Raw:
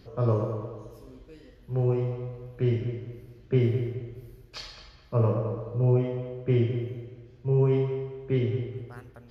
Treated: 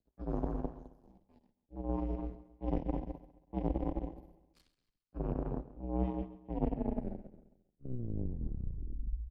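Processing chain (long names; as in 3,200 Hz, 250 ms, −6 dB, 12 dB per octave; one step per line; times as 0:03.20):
turntable brake at the end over 2.92 s
low shelf with overshoot 440 Hz +10.5 dB, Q 3
reversed playback
downward compressor 16 to 1, threshold −22 dBFS, peak gain reduction 18 dB
reversed playback
power curve on the samples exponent 3
frequency shifter −65 Hz
repeating echo 135 ms, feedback 47%, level −17 dB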